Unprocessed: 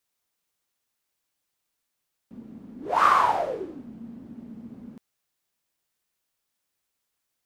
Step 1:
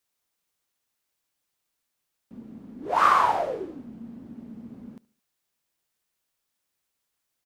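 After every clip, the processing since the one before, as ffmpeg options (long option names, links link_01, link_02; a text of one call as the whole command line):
ffmpeg -i in.wav -af "aecho=1:1:72|144|216:0.075|0.0345|0.0159" out.wav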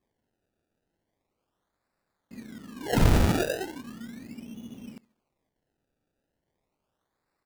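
ffmpeg -i in.wav -af "afftfilt=real='re*(1-between(b*sr/4096,2200,5700))':imag='im*(1-between(b*sr/4096,2200,5700))':win_size=4096:overlap=0.75,acrusher=samples=28:mix=1:aa=0.000001:lfo=1:lforange=28:lforate=0.37" out.wav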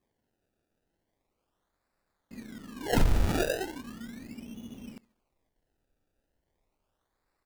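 ffmpeg -i in.wav -af "asubboost=boost=3.5:cutoff=69,acompressor=threshold=-18dB:ratio=12" out.wav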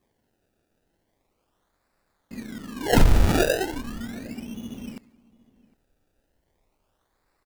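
ffmpeg -i in.wav -filter_complex "[0:a]asplit=2[link_01][link_02];[link_02]adelay=758,volume=-23dB,highshelf=frequency=4000:gain=-17.1[link_03];[link_01][link_03]amix=inputs=2:normalize=0,volume=7.5dB" out.wav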